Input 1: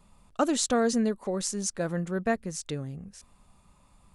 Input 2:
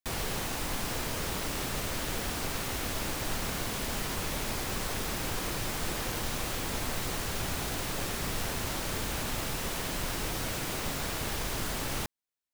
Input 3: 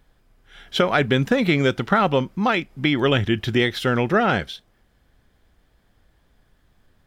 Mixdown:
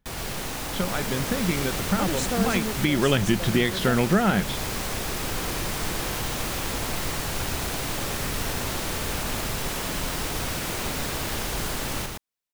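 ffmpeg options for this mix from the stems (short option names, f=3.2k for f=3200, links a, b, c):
-filter_complex "[0:a]adelay=1600,volume=-6.5dB[a];[1:a]volume=0dB,asplit=2[b][c];[c]volume=-3dB[d];[2:a]equalizer=f=190:w=4.4:g=12,volume=-2.5dB,afade=t=in:st=2.46:d=0.27:silence=0.281838[e];[d]aecho=0:1:116:1[f];[a][b][e][f]amix=inputs=4:normalize=0,dynaudnorm=f=400:g=5:m=3dB,alimiter=limit=-10.5dB:level=0:latency=1:release=320"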